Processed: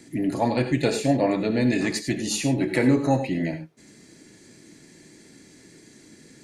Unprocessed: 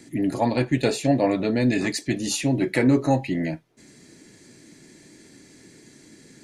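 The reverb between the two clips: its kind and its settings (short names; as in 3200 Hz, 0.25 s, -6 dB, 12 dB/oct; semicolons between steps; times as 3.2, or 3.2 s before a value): non-linear reverb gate 0.12 s rising, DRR 8 dB; gain -1 dB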